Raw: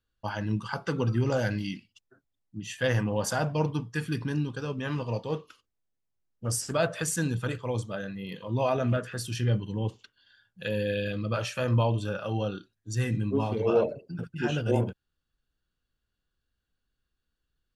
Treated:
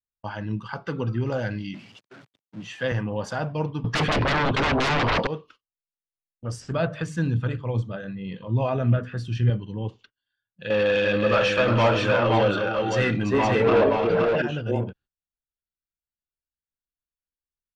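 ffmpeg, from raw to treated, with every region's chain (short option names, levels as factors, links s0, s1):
-filter_complex "[0:a]asettb=1/sr,asplit=3[s0][s1][s2];[s0]atrim=end=1.744[s3];[s1]atrim=start=1.74:end=2.92,asetpts=PTS-STARTPTS,afade=t=in:d=0.004:c=qsin,afade=t=out:st=1.176:d=0.004:c=qsin,aeval=exprs='val(0)+0.5*0.00891*sgn(val(0))':c=same,highpass=f=120:w=0.5412,highpass=f=120:w=1.3066[s4];[s2]atrim=start=2.916[s5];[s3][s4]acrossfade=d=0.004:c1=hsin:c2=qsin[s6];[s6][s5]acrossfade=d=0.004:c1=qsin:c2=hsin,asettb=1/sr,asplit=3[s7][s8][s9];[s7]atrim=end=3.844[s10];[s8]atrim=start=3.84:end=5.27,asetpts=PTS-STARTPTS,afade=t=in:d=0.004:c=qsin,afade=t=out:st=1.426:d=0.004:c=qsin,equalizer=f=78:t=o:w=1:g=-13.5,adynamicsmooth=sensitivity=1.5:basefreq=4900,aeval=exprs='0.119*sin(PI/2*10*val(0)/0.119)':c=same[s11];[s9]atrim=start=5.266[s12];[s10][s11]acrossfade=d=0.004:c1=hsin:c2=qsin[s13];[s13][s12]acrossfade=d=0.004:c1=qsin:c2=hsin,asettb=1/sr,asplit=3[s14][s15][s16];[s14]atrim=end=6.604[s17];[s15]atrim=start=6.6:end=9.5,asetpts=PTS-STARTPTS,afade=t=in:d=0.004:c=qsin,afade=t=out:st=2.896:d=0.004:c=qsin,bass=f=250:g=8,treble=f=4000:g=-3,bandreject=f=50:t=h:w=6,bandreject=f=100:t=h:w=6,bandreject=f=150:t=h:w=6,bandreject=f=200:t=h:w=6,bandreject=f=250:t=h:w=6,bandreject=f=300:t=h:w=6[s18];[s16]atrim=start=9.496[s19];[s17][s18]acrossfade=d=0.004:c1=hsin:c2=qsin[s20];[s20][s19]acrossfade=d=0.004:c1=qsin:c2=hsin,asettb=1/sr,asplit=3[s21][s22][s23];[s21]atrim=end=10.704[s24];[s22]atrim=start=10.7:end=14.42,asetpts=PTS-STARTPTS,afade=t=in:d=0.004:c=qsin,afade=t=out:st=3.716:d=0.004:c=qsin,asplit=2[s25][s26];[s26]highpass=f=720:p=1,volume=14.1,asoftclip=type=tanh:threshold=0.251[s27];[s25][s27]amix=inputs=2:normalize=0,lowpass=f=3500:p=1,volume=0.501,aecho=1:1:343|521:0.422|0.668,atrim=end_sample=164052[s28];[s23]atrim=start=14.416[s29];[s24][s28]acrossfade=d=0.004:c1=hsin:c2=qsin[s30];[s30][s29]acrossfade=d=0.004:c1=qsin:c2=hsin,agate=range=0.1:threshold=0.00282:ratio=16:detection=peak,lowpass=3900"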